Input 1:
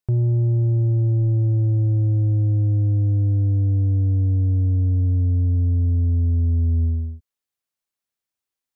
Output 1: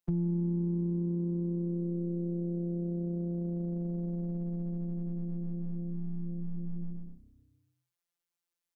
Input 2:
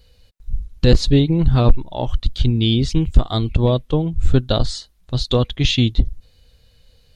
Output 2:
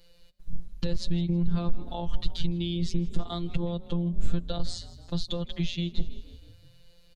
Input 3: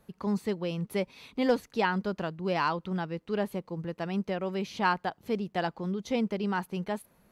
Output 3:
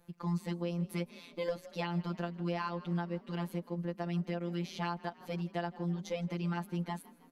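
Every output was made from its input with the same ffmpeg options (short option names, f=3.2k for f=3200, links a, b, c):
-filter_complex "[0:a]afftfilt=real='hypot(re,im)*cos(PI*b)':imag='0':win_size=1024:overlap=0.75,alimiter=limit=-11.5dB:level=0:latency=1:release=172,asplit=5[a][b][c][d][e];[b]adelay=160,afreqshift=32,volume=-22dB[f];[c]adelay=320,afreqshift=64,volume=-27.5dB[g];[d]adelay=480,afreqshift=96,volume=-33dB[h];[e]adelay=640,afreqshift=128,volume=-38.5dB[i];[a][f][g][h][i]amix=inputs=5:normalize=0,acrossover=split=150[j][k];[k]acompressor=threshold=-33dB:ratio=4[l];[j][l]amix=inputs=2:normalize=0"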